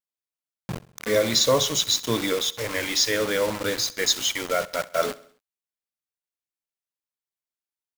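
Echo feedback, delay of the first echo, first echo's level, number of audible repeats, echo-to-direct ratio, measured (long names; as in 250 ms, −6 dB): 53%, 66 ms, −20.0 dB, 3, −18.5 dB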